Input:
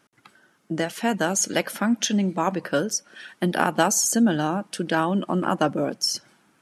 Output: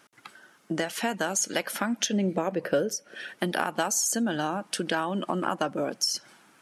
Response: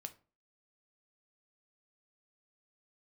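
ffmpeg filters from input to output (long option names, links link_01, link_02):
-filter_complex "[0:a]lowshelf=frequency=320:gain=-9,acompressor=threshold=-32dB:ratio=3,asettb=1/sr,asplit=3[link_01][link_02][link_03];[link_01]atrim=end=2.064[link_04];[link_02]atrim=start=2.06:end=3.39,asetpts=PTS-STARTPTS,afade=type=in:duration=0.004:curve=qsin,afade=type=out:start_time=1.326:duration=0.004:curve=qsin,equalizer=frequency=125:width_type=o:width=1:gain=5,equalizer=frequency=500:width_type=o:width=1:gain=8,equalizer=frequency=1000:width_type=o:width=1:gain=-8,equalizer=frequency=4000:width_type=o:width=1:gain=-4,equalizer=frequency=8000:width_type=o:width=1:gain=-6[link_05];[link_03]atrim=start=3.386[link_06];[link_04][link_05]acrossfade=duration=0.004:curve1=hsin:curve2=qsin[link_07];[link_07][link_06]acrossfade=duration=0.004:curve1=qsin:curve2=hsin,volume=5.5dB"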